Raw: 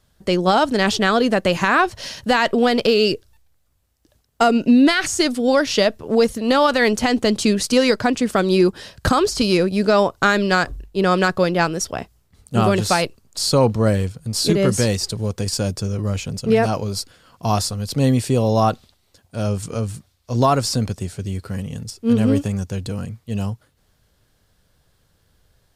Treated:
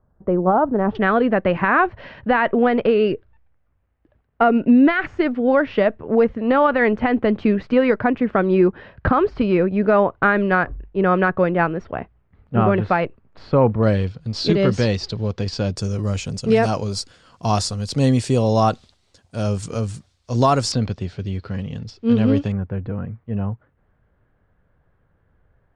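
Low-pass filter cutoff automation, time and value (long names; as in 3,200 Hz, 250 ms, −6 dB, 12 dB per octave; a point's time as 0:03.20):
low-pass filter 24 dB per octave
1,200 Hz
from 0:00.95 2,200 Hz
from 0:13.83 4,500 Hz
from 0:15.76 8,300 Hz
from 0:20.72 4,400 Hz
from 0:22.52 1,900 Hz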